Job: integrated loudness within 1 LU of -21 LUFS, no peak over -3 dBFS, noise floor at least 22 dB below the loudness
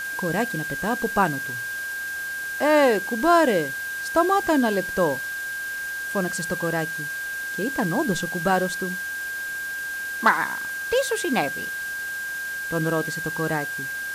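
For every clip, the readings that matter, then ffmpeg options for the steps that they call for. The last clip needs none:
steady tone 1.6 kHz; tone level -28 dBFS; noise floor -31 dBFS; noise floor target -46 dBFS; loudness -24.0 LUFS; peak level -6.0 dBFS; loudness target -21.0 LUFS
-> -af "bandreject=f=1600:w=30"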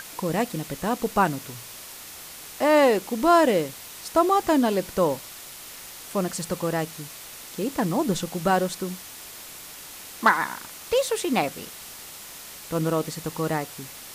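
steady tone not found; noise floor -42 dBFS; noise floor target -47 dBFS
-> -af "afftdn=nr=6:nf=-42"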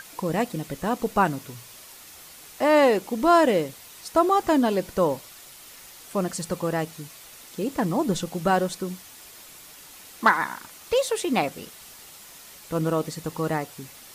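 noise floor -46 dBFS; noise floor target -47 dBFS
-> -af "afftdn=nr=6:nf=-46"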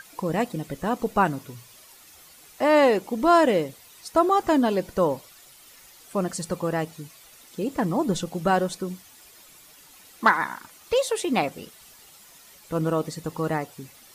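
noise floor -51 dBFS; loudness -24.5 LUFS; peak level -5.5 dBFS; loudness target -21.0 LUFS
-> -af "volume=1.5,alimiter=limit=0.708:level=0:latency=1"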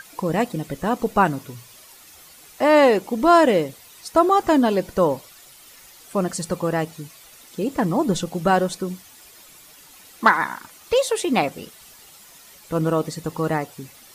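loudness -21.0 LUFS; peak level -3.0 dBFS; noise floor -48 dBFS

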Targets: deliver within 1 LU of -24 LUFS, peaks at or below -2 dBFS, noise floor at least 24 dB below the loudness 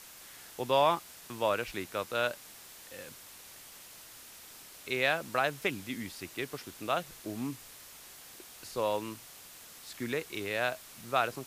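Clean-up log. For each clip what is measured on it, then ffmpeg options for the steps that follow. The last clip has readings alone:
noise floor -52 dBFS; noise floor target -57 dBFS; loudness -33.0 LUFS; peak level -12.0 dBFS; loudness target -24.0 LUFS
-> -af "afftdn=nr=6:nf=-52"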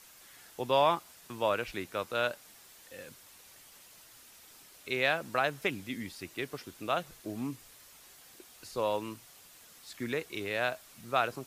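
noise floor -56 dBFS; noise floor target -57 dBFS
-> -af "afftdn=nr=6:nf=-56"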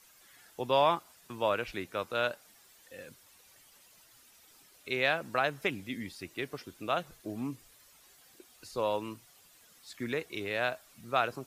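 noise floor -61 dBFS; loudness -33.0 LUFS; peak level -12.0 dBFS; loudness target -24.0 LUFS
-> -af "volume=2.82"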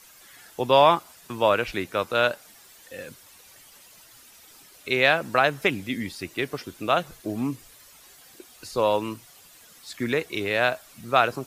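loudness -24.0 LUFS; peak level -3.0 dBFS; noise floor -52 dBFS

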